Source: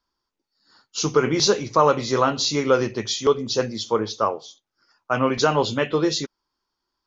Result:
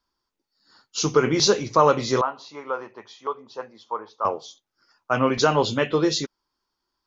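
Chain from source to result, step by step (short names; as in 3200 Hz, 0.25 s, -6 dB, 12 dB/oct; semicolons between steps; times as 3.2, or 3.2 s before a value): 2.21–4.25 band-pass 970 Hz, Q 2.7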